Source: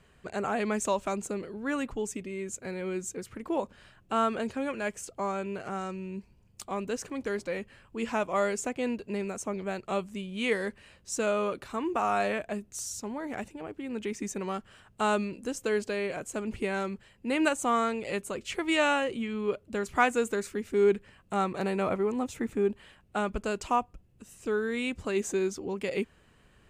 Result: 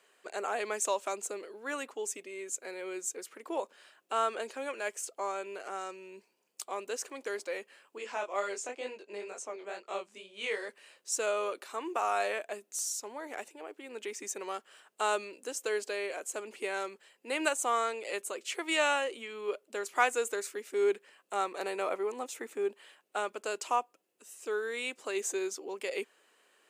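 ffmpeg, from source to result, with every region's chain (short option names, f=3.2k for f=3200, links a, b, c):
-filter_complex "[0:a]asettb=1/sr,asplit=3[a][b][c];[a]atrim=end=7.984[d];[b]atrim=start=7.98:end=10.69,asetpts=PTS-STARTPTS,afade=t=in:d=0.004:c=qsin,afade=t=out:st=2.706:d=0.004:c=qsin,flanger=delay=19:depth=5.6:speed=2.1,highpass=130,lowpass=7.3k[e];[c]atrim=start=10.686[f];[d][e]acrossfade=d=0.004:c1=hsin:c2=qsin[g];[g][f]acrossfade=d=0.004:c1=qsin:c2=hsin,highpass=f=370:w=0.5412,highpass=f=370:w=1.3066,highshelf=f=4.5k:g=7.5,volume=-3dB"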